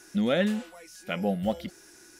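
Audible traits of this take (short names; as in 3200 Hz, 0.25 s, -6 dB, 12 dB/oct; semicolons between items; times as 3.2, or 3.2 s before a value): noise floor -54 dBFS; spectral tilt -5.0 dB/oct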